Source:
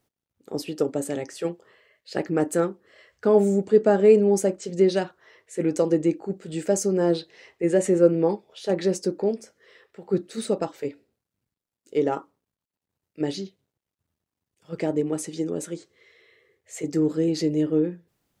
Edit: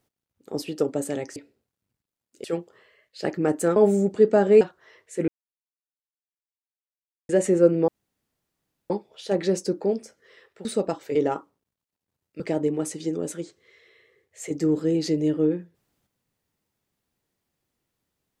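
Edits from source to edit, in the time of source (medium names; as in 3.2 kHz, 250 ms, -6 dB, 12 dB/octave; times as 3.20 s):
2.68–3.29 s: delete
4.14–5.01 s: delete
5.68–7.69 s: mute
8.28 s: insert room tone 1.02 s
10.03–10.38 s: delete
10.88–11.96 s: move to 1.36 s
13.21–14.73 s: delete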